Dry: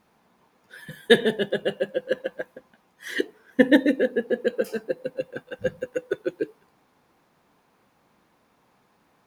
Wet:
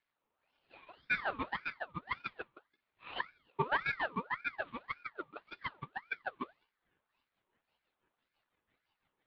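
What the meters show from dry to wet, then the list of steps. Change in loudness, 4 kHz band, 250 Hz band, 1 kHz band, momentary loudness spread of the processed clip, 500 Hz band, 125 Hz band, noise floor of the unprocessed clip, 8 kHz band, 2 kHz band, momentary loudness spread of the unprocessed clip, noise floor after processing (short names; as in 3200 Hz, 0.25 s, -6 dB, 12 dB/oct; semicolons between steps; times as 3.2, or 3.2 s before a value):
-14.0 dB, -16.5 dB, -23.5 dB, +3.0 dB, 14 LU, -22.5 dB, -8.5 dB, -65 dBFS, n/a, -7.5 dB, 17 LU, under -85 dBFS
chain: CVSD 16 kbps; rotary speaker horn 1.2 Hz, later 6 Hz, at 6.5; spectral noise reduction 8 dB; ring modulator with a swept carrier 1300 Hz, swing 50%, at 1.8 Hz; gain -8.5 dB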